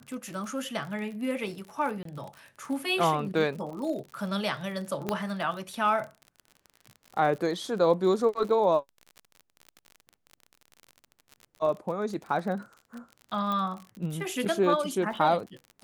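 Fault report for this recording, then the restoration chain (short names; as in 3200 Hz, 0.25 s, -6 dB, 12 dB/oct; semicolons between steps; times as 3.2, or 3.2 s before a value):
crackle 49/s -36 dBFS
2.03–2.05 gap 23 ms
5.09 pop -14 dBFS
13.52 pop -19 dBFS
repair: de-click; interpolate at 2.03, 23 ms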